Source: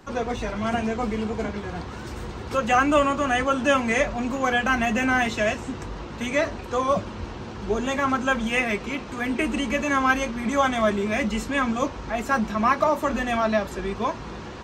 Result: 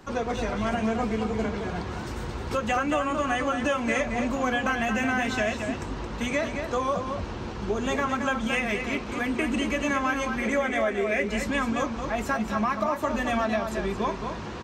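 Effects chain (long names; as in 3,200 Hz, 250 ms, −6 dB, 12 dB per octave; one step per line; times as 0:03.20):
0:10.38–0:11.24: octave-band graphic EQ 125/500/1,000/2,000/4,000 Hz −12/+10/−7/+10/−5 dB
downward compressor 6 to 1, threshold −23 dBFS, peak gain reduction 11 dB
slap from a distant wall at 38 metres, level −6 dB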